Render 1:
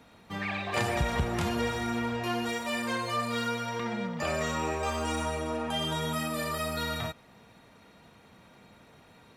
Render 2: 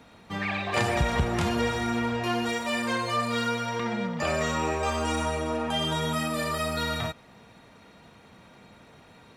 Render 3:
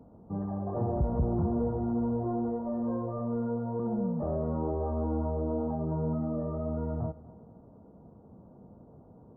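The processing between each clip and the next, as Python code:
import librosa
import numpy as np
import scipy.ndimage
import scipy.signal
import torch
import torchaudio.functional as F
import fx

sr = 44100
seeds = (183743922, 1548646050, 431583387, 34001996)

y1 = fx.peak_eq(x, sr, hz=13000.0, db=-6.5, octaves=0.52)
y1 = F.gain(torch.from_numpy(y1), 3.5).numpy()
y2 = 10.0 ** (-22.5 / 20.0) * np.tanh(y1 / 10.0 ** (-22.5 / 20.0))
y2 = scipy.ndimage.gaussian_filter1d(y2, 12.0, mode='constant')
y2 = fx.echo_feedback(y2, sr, ms=243, feedback_pct=44, wet_db=-20)
y2 = F.gain(torch.from_numpy(y2), 2.5).numpy()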